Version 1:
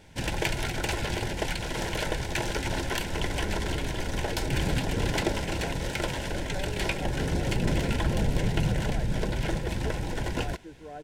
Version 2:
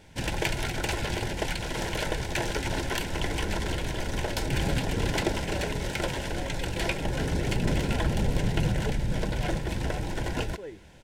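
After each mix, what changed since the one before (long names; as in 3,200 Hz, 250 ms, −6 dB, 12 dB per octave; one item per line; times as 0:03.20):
speech: entry −1.00 s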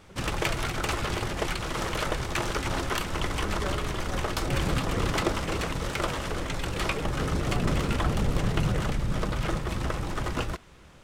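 speech: entry −1.90 s
master: remove Butterworth band-reject 1,200 Hz, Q 3.1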